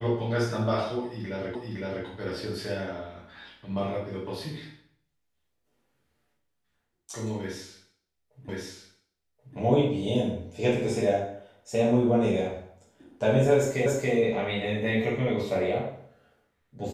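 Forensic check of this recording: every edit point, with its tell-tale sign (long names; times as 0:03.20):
0:01.55: the same again, the last 0.51 s
0:08.49: the same again, the last 1.08 s
0:13.86: the same again, the last 0.28 s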